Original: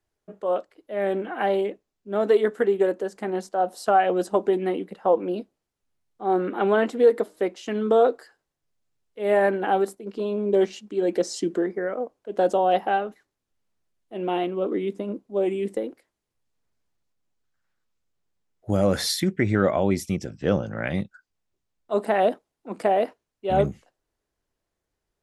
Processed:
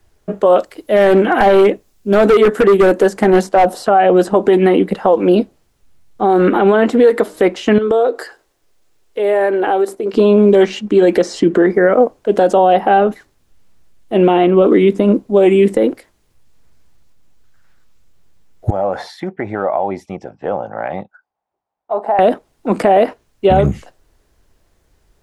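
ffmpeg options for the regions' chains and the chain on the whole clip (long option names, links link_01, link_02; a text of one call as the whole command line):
ffmpeg -i in.wav -filter_complex "[0:a]asettb=1/sr,asplit=3[link_01][link_02][link_03];[link_01]atrim=end=0.584[link_04];[link_02]atrim=start=0.58:end=3.74,asetpts=PTS-STARTPTS,afade=type=in:duration=0.004:curve=qsin,afade=type=out:start_time=3.156:duration=0.004:curve=qsin,aemphasis=mode=production:type=cd,asoftclip=type=hard:threshold=-22dB[link_05];[link_03]atrim=start=3.736[link_06];[link_04][link_05]acrossfade=duration=0.004:curve1=hsin:curve2=qsin[link_07];[link_07][link_06]acrossfade=duration=0.004:curve1=qsin:curve2=hsin,asettb=1/sr,asplit=3[link_08][link_09][link_10];[link_08]atrim=end=7.784[link_11];[link_09]atrim=start=7.78:end=10.14,asetpts=PTS-STARTPTS,afade=type=in:duration=0.004:curve=qsin,afade=type=out:start_time=2.356:duration=0.004:curve=qsin,lowshelf=frequency=250:width_type=q:width=1.5:gain=-9.5,acompressor=threshold=-36dB:ratio=3:attack=3.2:release=140:knee=1:detection=peak[link_12];[link_10]atrim=start=10.136[link_13];[link_11][link_12]acrossfade=duration=0.004:curve1=hsin:curve2=qsin[link_14];[link_14][link_13]acrossfade=duration=0.004:curve1=qsin:curve2=hsin,asettb=1/sr,asplit=3[link_15][link_16][link_17];[link_15]atrim=end=18.704[link_18];[link_16]atrim=start=18.7:end=22.19,asetpts=PTS-STARTPTS,afade=type=in:duration=0.004:curve=qsin,afade=type=out:start_time=3.486:duration=0.004:curve=qsin,bandpass=frequency=800:width_type=q:width=4.3,acompressor=threshold=-36dB:ratio=2:attack=3.2:release=140:knee=1:detection=peak[link_19];[link_17]atrim=start=22.186[link_20];[link_18][link_19]acrossfade=duration=0.004:curve1=hsin:curve2=qsin[link_21];[link_21][link_20]acrossfade=duration=0.004:curve1=qsin:curve2=hsin,lowshelf=frequency=100:gain=10,acrossover=split=880|2800[link_22][link_23][link_24];[link_22]acompressor=threshold=-26dB:ratio=4[link_25];[link_23]acompressor=threshold=-36dB:ratio=4[link_26];[link_24]acompressor=threshold=-56dB:ratio=4[link_27];[link_25][link_26][link_27]amix=inputs=3:normalize=0,alimiter=level_in=21dB:limit=-1dB:release=50:level=0:latency=1,volume=-1.5dB" out.wav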